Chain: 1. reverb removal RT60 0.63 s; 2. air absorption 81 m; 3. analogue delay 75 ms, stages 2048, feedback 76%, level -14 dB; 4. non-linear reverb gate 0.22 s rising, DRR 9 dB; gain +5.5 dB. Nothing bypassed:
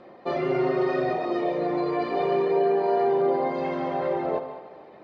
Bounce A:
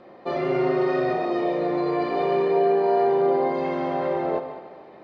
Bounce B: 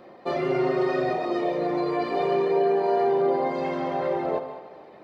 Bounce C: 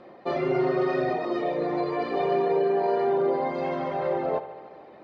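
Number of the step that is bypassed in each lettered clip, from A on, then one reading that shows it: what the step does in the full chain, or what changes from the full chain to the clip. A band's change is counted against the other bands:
1, loudness change +2.0 LU; 2, 4 kHz band +2.0 dB; 4, echo-to-direct -6.5 dB to -10.5 dB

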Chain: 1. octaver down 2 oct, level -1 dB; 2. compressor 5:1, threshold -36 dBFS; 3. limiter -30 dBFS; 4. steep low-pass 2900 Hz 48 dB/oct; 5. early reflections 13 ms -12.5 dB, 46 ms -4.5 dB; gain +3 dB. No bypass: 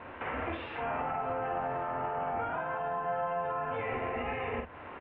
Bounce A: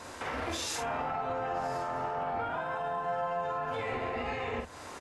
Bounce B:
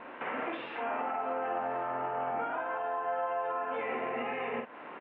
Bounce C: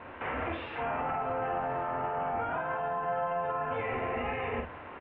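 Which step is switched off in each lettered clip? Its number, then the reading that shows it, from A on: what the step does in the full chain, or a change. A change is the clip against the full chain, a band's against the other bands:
4, momentary loudness spread change -1 LU; 1, 125 Hz band -12.0 dB; 2, mean gain reduction 11.5 dB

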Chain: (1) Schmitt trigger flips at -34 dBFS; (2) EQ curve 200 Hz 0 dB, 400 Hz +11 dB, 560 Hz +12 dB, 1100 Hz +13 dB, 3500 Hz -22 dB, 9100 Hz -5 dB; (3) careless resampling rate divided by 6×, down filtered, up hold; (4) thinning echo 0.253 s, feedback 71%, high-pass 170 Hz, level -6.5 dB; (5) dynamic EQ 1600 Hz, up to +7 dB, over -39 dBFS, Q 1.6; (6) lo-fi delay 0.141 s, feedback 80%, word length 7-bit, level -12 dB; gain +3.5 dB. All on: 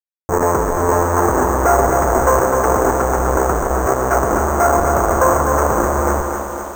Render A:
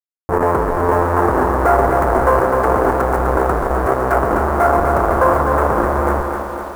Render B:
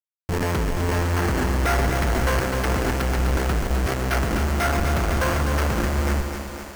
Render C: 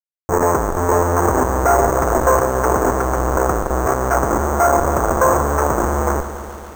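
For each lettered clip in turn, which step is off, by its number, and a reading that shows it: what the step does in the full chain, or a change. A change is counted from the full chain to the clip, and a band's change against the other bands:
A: 3, 8 kHz band -15.5 dB; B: 2, 125 Hz band +9.5 dB; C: 4, loudness change -1.0 LU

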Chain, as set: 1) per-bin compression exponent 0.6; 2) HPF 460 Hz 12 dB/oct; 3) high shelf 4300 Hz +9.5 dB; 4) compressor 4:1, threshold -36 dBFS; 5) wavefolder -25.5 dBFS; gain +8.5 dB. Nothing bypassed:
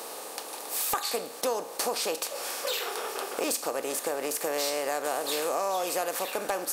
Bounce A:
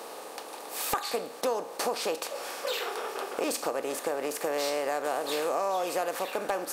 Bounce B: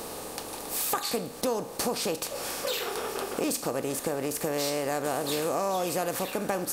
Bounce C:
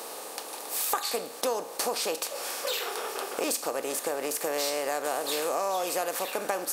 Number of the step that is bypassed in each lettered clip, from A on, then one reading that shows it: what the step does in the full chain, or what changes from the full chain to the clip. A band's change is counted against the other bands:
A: 3, 8 kHz band -6.0 dB; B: 2, 250 Hz band +8.0 dB; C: 5, distortion -24 dB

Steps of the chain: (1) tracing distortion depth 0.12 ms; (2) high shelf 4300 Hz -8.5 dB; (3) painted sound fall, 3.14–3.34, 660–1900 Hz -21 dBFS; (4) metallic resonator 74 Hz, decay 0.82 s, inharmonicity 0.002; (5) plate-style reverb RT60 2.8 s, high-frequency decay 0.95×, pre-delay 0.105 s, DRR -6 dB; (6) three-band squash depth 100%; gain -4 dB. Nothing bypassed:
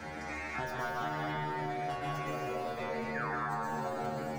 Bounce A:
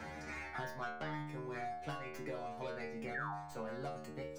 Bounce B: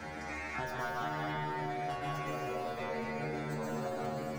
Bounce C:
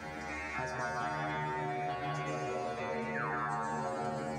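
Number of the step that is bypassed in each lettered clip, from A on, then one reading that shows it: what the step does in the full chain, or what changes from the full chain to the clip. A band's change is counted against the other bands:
5, crest factor change +2.0 dB; 3, 1 kHz band -2.0 dB; 1, 8 kHz band +2.5 dB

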